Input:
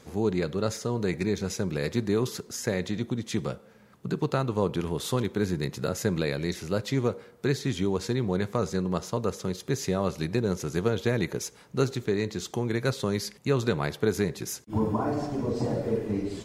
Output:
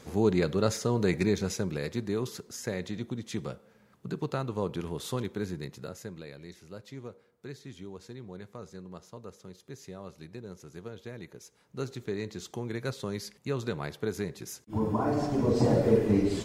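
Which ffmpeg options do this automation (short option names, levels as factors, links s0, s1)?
-af "volume=14.1,afade=t=out:st=1.23:d=0.66:silence=0.446684,afade=t=out:st=5.25:d=0.91:silence=0.281838,afade=t=in:st=11.43:d=0.69:silence=0.334965,afade=t=in:st=14.58:d=1.17:silence=0.251189"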